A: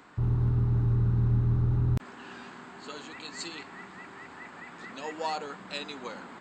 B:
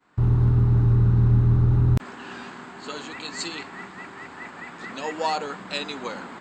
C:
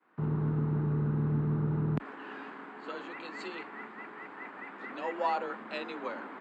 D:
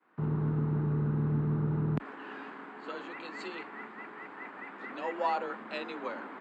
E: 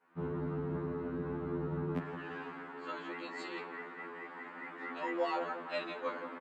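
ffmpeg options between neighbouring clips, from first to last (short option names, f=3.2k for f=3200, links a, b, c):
-af "agate=range=-33dB:threshold=-44dB:ratio=3:detection=peak,volume=7dB"
-filter_complex "[0:a]afreqshift=31,acrossover=split=170 2800:gain=0.0794 1 0.0794[a][b][c];[a][b][c]amix=inputs=3:normalize=0,volume=-4.5dB"
-af anull
-filter_complex "[0:a]asplit=2[a][b];[b]adelay=172,lowpass=f=2k:p=1,volume=-10dB,asplit=2[c][d];[d]adelay=172,lowpass=f=2k:p=1,volume=0.52,asplit=2[e][f];[f]adelay=172,lowpass=f=2k:p=1,volume=0.52,asplit=2[g][h];[h]adelay=172,lowpass=f=2k:p=1,volume=0.52,asplit=2[i][j];[j]adelay=172,lowpass=f=2k:p=1,volume=0.52,asplit=2[k][l];[l]adelay=172,lowpass=f=2k:p=1,volume=0.52[m];[a][c][e][g][i][k][m]amix=inputs=7:normalize=0,afftfilt=real='re*2*eq(mod(b,4),0)':imag='im*2*eq(mod(b,4),0)':win_size=2048:overlap=0.75,volume=1dB"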